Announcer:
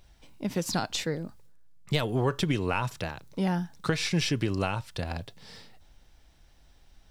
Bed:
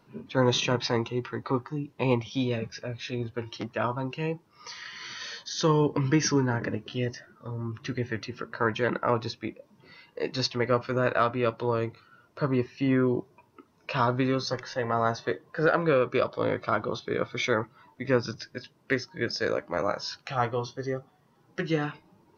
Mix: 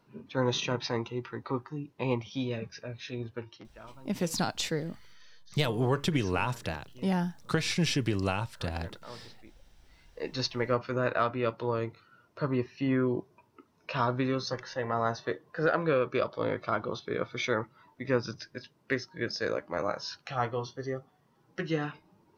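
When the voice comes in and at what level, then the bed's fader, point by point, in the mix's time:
3.65 s, −1.0 dB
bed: 0:03.38 −5 dB
0:03.75 −21 dB
0:09.73 −21 dB
0:10.31 −3.5 dB

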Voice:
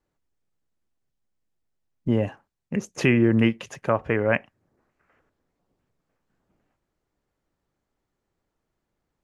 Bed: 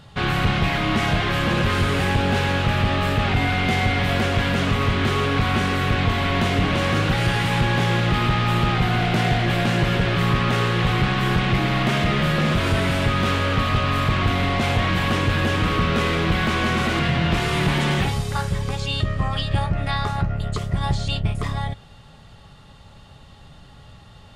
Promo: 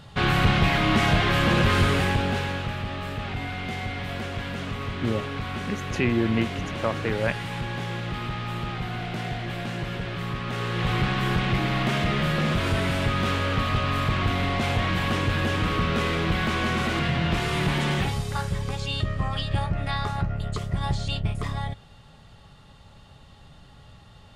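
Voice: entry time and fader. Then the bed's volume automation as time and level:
2.95 s, −4.5 dB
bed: 0:01.85 0 dB
0:02.81 −11 dB
0:10.43 −11 dB
0:10.93 −4 dB

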